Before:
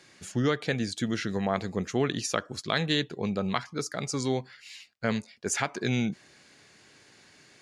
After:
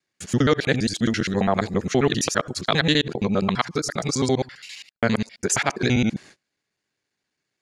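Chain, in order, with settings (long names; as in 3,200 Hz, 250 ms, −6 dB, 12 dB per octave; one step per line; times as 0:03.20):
reversed piece by piece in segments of 67 ms
pitch vibrato 8.2 Hz 32 cents
noise gate −51 dBFS, range −31 dB
level +7.5 dB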